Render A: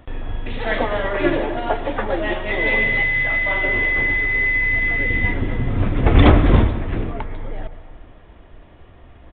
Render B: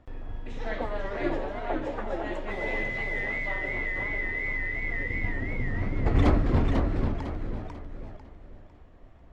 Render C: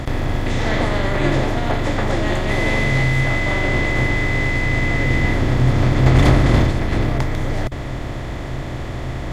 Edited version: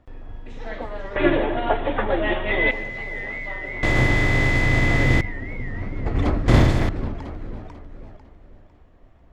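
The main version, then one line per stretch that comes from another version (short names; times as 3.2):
B
1.16–2.71 from A
3.83–5.21 from C
6.48–6.89 from C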